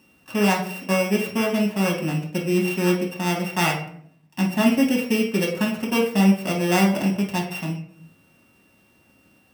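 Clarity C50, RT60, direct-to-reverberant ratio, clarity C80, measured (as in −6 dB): 6.0 dB, 0.60 s, −3.0 dB, 10.5 dB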